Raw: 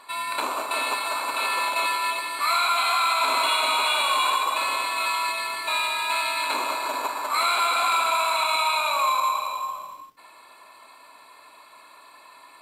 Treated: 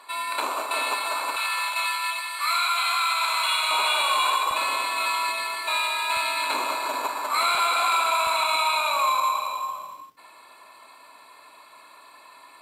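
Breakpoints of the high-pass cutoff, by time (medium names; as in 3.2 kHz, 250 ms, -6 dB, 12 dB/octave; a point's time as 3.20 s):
270 Hz
from 1.36 s 1.1 kHz
from 3.71 s 340 Hz
from 4.51 s 98 Hz
from 5.44 s 310 Hz
from 6.17 s 90 Hz
from 7.55 s 260 Hz
from 8.27 s 62 Hz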